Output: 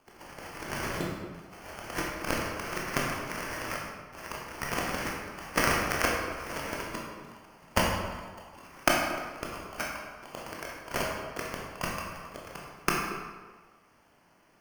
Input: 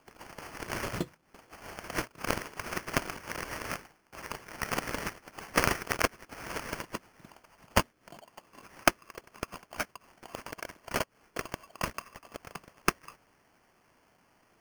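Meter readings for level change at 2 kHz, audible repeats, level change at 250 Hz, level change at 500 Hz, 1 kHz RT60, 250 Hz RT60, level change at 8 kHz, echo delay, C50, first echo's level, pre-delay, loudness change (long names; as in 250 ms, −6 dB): +2.5 dB, no echo audible, +2.5 dB, +2.5 dB, 1.5 s, 1.4 s, +1.5 dB, no echo audible, 1.0 dB, no echo audible, 16 ms, +2.0 dB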